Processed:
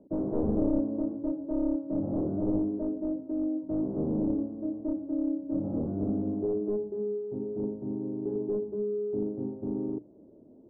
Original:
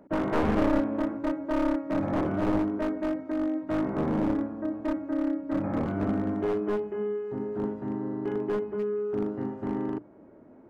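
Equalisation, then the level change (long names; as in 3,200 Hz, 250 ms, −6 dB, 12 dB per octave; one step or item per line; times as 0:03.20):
transistor ladder low-pass 650 Hz, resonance 20%
+2.5 dB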